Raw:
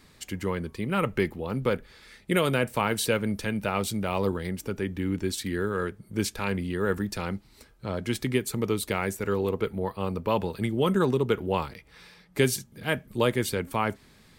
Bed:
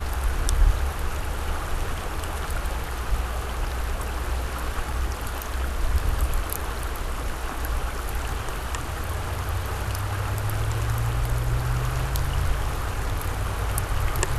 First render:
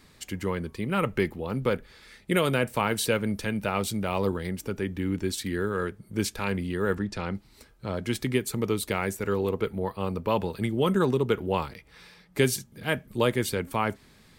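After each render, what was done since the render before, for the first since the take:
0:06.95–0:07.35: high-frequency loss of the air 80 metres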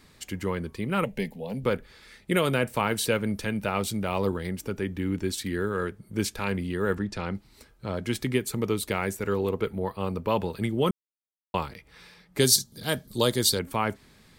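0:01.04–0:01.64: phaser with its sweep stopped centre 340 Hz, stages 6
0:10.91–0:11.54: silence
0:12.40–0:13.59: high shelf with overshoot 3,200 Hz +8.5 dB, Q 3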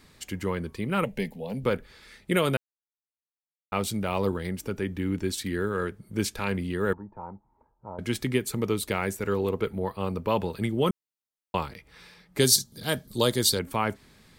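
0:02.57–0:03.72: silence
0:06.93–0:07.99: transistor ladder low-pass 960 Hz, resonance 80%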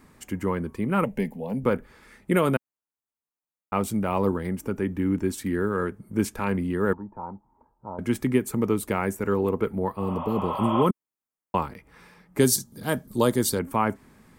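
graphic EQ with 10 bands 250 Hz +6 dB, 1,000 Hz +5 dB, 4,000 Hz −11 dB
0:10.02–0:10.80: healed spectral selection 520–3,700 Hz both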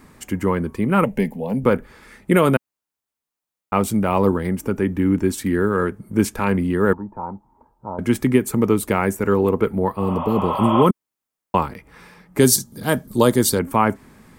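level +6.5 dB
brickwall limiter −3 dBFS, peak gain reduction 2 dB

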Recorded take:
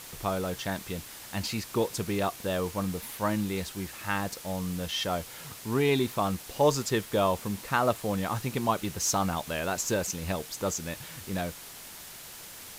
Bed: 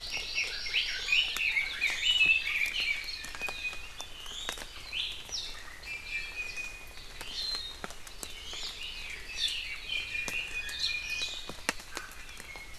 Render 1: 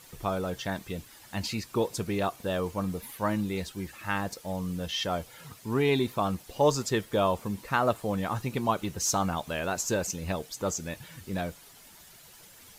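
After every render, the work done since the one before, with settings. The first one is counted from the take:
broadband denoise 10 dB, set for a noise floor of −45 dBFS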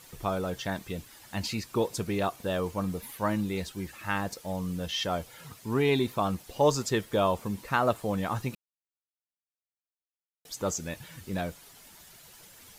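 0:08.55–0:10.45: silence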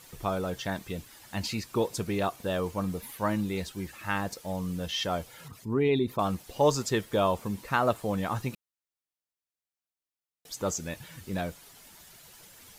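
0:05.48–0:06.19: spectral envelope exaggerated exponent 1.5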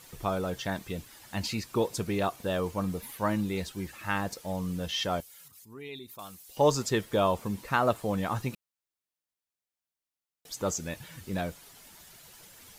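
0:05.20–0:06.57: first-order pre-emphasis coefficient 0.9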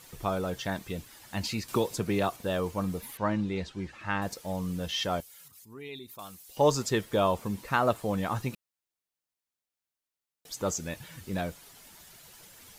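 0:01.68–0:02.37: multiband upward and downward compressor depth 70%
0:03.17–0:04.22: high-frequency loss of the air 110 metres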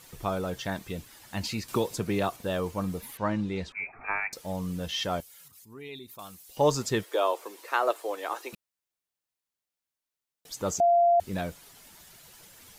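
0:03.72–0:04.33: voice inversion scrambler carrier 2,500 Hz
0:07.04–0:08.53: Butterworth high-pass 330 Hz 48 dB per octave
0:10.80–0:11.20: beep over 691 Hz −17.5 dBFS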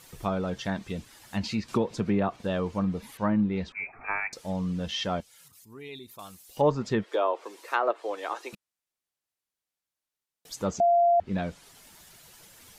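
dynamic equaliser 210 Hz, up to +7 dB, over −47 dBFS, Q 3.3
treble cut that deepens with the level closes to 1,900 Hz, closed at −21 dBFS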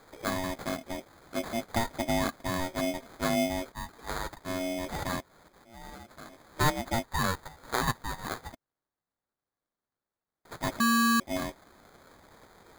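ring modulation 460 Hz
sample-rate reduction 2,800 Hz, jitter 0%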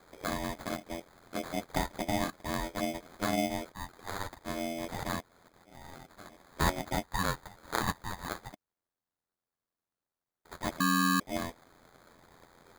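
ring modulation 43 Hz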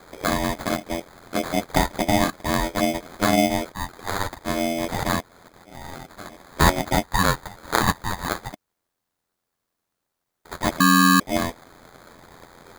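level +11.5 dB
brickwall limiter −3 dBFS, peak gain reduction 1 dB

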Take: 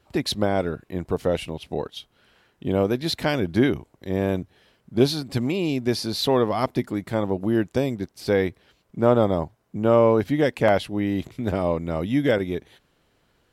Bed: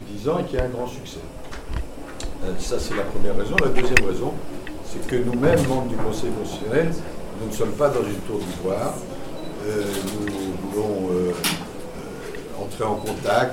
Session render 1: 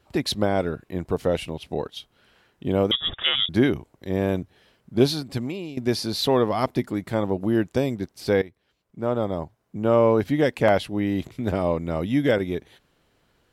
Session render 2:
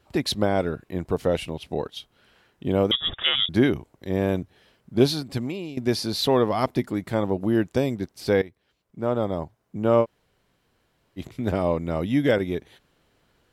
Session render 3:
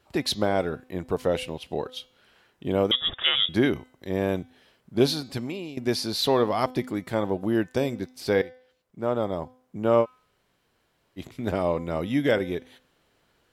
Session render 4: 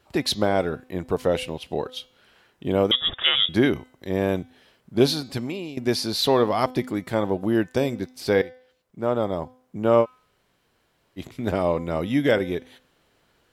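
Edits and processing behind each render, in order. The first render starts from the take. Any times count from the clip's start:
0:02.91–0:03.49: voice inversion scrambler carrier 3,600 Hz; 0:05.13–0:05.77: fade out, to −15.5 dB; 0:08.42–0:10.26: fade in, from −17.5 dB
0:10.03–0:11.19: fill with room tone, crossfade 0.06 s
low-shelf EQ 260 Hz −5.5 dB; hum removal 254.2 Hz, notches 28
level +2.5 dB

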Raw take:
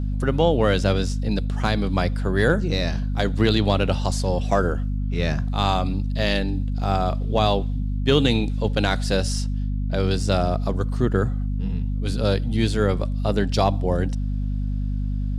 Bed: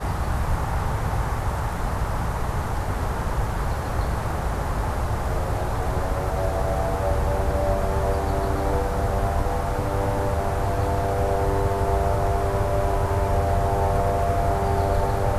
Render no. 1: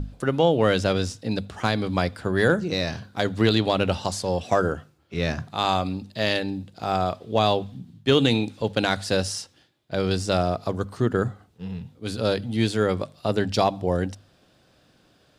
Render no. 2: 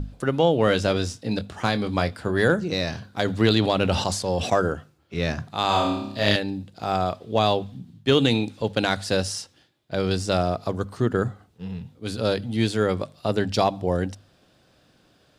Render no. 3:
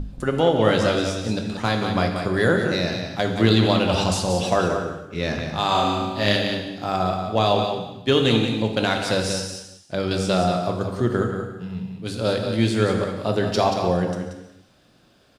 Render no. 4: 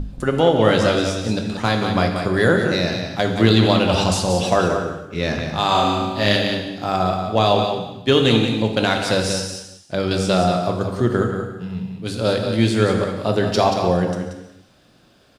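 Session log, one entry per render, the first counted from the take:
mains-hum notches 50/100/150/200/250 Hz
0:00.65–0:02.39: double-tracking delay 24 ms −10.5 dB; 0:03.26–0:04.53: level that may fall only so fast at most 62 dB per second; 0:05.67–0:06.36: flutter between parallel walls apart 5 metres, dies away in 0.72 s
on a send: single-tap delay 181 ms −7.5 dB; on the sum: reverb whose tail is shaped and stops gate 420 ms falling, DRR 4 dB
level +3 dB; brickwall limiter −2 dBFS, peak gain reduction 1.5 dB

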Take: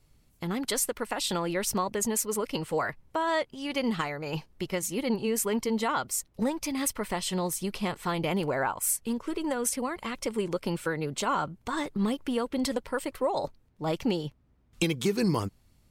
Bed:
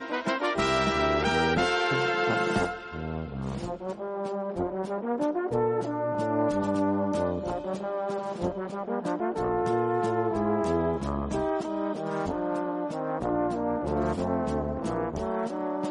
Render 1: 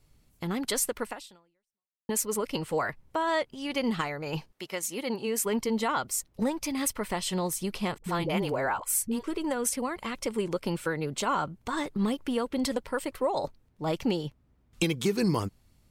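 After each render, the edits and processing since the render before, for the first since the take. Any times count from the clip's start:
0:01.07–0:02.09: fade out exponential
0:04.51–0:05.45: high-pass filter 840 Hz → 220 Hz 6 dB per octave
0:07.98–0:09.24: all-pass dispersion highs, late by 61 ms, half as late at 440 Hz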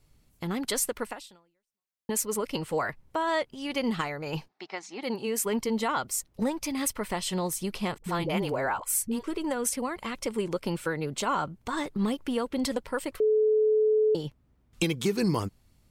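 0:04.48–0:05.03: loudspeaker in its box 280–5,000 Hz, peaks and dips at 520 Hz −10 dB, 770 Hz +10 dB, 3,000 Hz −7 dB
0:13.20–0:14.15: beep over 431 Hz −19.5 dBFS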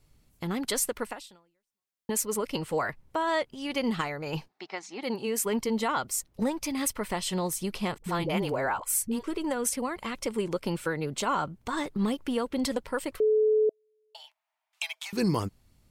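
0:13.69–0:15.13: Chebyshev high-pass with heavy ripple 630 Hz, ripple 6 dB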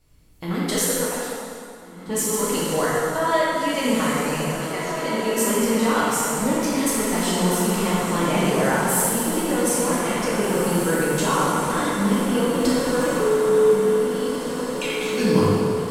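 feedback delay with all-pass diffusion 1,858 ms, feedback 55%, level −7 dB
dense smooth reverb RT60 2.5 s, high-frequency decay 0.75×, DRR −7.5 dB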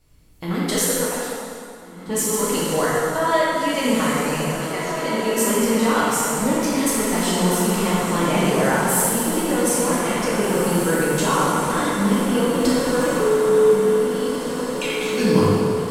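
level +1.5 dB

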